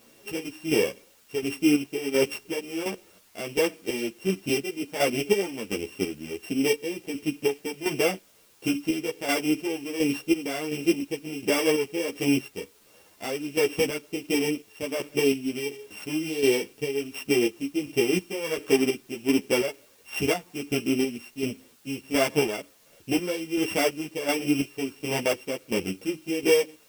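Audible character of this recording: a buzz of ramps at a fixed pitch in blocks of 16 samples; chopped level 1.4 Hz, depth 60%, duty 45%; a quantiser's noise floor 10-bit, dither triangular; a shimmering, thickened sound

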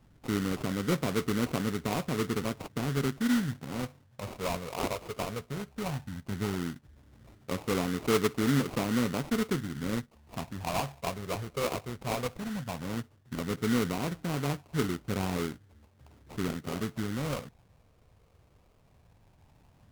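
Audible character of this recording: phasing stages 8, 0.15 Hz, lowest notch 270–1600 Hz; aliases and images of a low sample rate 1.7 kHz, jitter 20%; AAC

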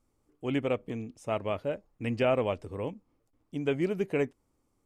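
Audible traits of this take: noise floor -75 dBFS; spectral tilt -6.0 dB/octave

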